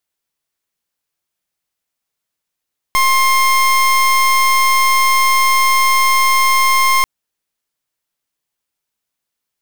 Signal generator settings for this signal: pulse 1060 Hz, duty 28% -12 dBFS 4.09 s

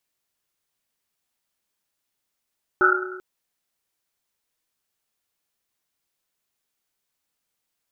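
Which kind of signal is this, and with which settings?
Risset drum length 0.39 s, pitch 370 Hz, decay 1.41 s, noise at 1400 Hz, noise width 190 Hz, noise 65%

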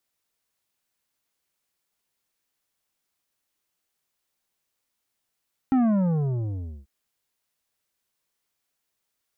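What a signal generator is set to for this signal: sub drop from 270 Hz, over 1.14 s, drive 9.5 dB, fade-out 1.14 s, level -18 dB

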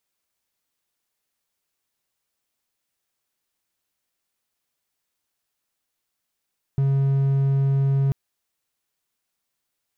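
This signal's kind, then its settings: tone triangle 137 Hz -15 dBFS 1.34 s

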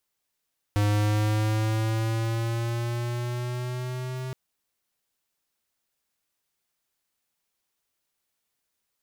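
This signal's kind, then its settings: gliding synth tone square, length 3.57 s, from 103 Hz, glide +4 st, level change -11 dB, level -22 dB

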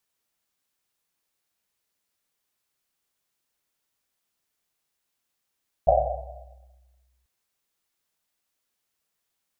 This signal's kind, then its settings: Risset drum length 1.39 s, pitch 63 Hz, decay 1.96 s, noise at 660 Hz, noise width 220 Hz, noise 70%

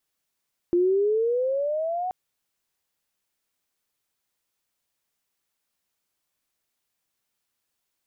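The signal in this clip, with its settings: gliding synth tone sine, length 1.38 s, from 344 Hz, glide +13.5 st, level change -8.5 dB, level -17 dB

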